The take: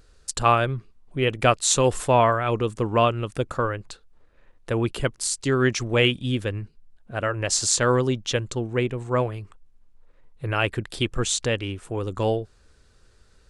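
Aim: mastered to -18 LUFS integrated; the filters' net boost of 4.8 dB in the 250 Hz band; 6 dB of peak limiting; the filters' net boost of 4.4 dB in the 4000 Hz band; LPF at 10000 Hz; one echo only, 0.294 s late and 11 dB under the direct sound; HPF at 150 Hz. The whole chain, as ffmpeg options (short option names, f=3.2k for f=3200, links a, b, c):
-af "highpass=150,lowpass=10k,equalizer=f=250:t=o:g=6.5,equalizer=f=4k:t=o:g=6,alimiter=limit=-7dB:level=0:latency=1,aecho=1:1:294:0.282,volume=5dB"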